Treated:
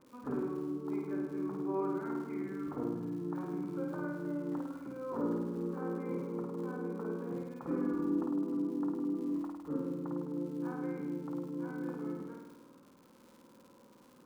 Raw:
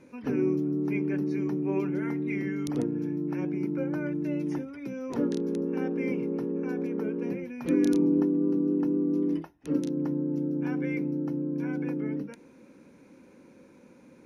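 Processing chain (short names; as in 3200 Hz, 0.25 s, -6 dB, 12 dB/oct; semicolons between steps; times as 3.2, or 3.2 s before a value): ladder low-pass 1300 Hz, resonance 65%; crackle 100/s -51 dBFS; flutter echo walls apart 8.9 m, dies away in 1.1 s; gain +1 dB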